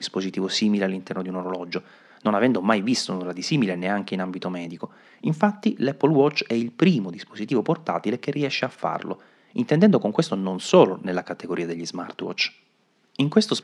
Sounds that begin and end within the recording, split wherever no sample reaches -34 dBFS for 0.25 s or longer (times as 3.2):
2.21–4.85
5.24–9.15
9.56–12.48